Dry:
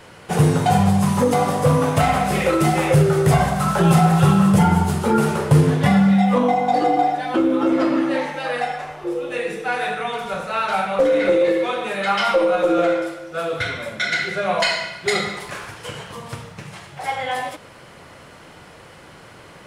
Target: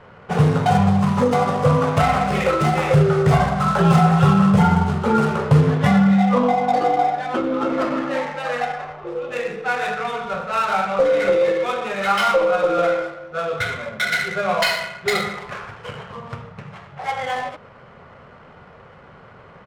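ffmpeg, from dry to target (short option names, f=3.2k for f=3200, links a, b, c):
-af "aresample=22050,aresample=44100,adynamicsmooth=sensitivity=3.5:basefreq=1.7k,superequalizer=6b=0.398:10b=1.41"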